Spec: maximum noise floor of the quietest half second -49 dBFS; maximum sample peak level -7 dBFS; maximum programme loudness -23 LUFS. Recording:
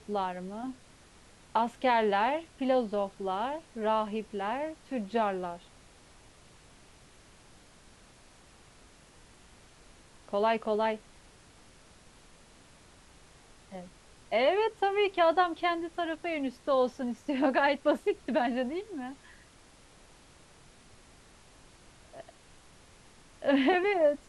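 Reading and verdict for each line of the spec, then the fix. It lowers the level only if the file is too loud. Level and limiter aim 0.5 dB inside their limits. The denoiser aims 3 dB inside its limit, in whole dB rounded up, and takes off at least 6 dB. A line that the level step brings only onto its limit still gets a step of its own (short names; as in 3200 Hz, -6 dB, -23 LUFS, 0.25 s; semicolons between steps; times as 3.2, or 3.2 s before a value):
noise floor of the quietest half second -57 dBFS: OK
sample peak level -12.5 dBFS: OK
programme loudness -30.0 LUFS: OK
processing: none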